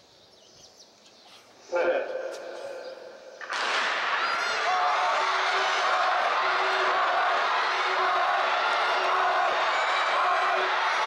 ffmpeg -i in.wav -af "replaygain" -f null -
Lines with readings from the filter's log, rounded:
track_gain = +8.8 dB
track_peak = 0.139